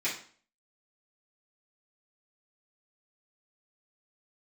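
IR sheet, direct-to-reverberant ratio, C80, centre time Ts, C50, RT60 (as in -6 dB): -10.5 dB, 12.0 dB, 28 ms, 6.5 dB, 0.45 s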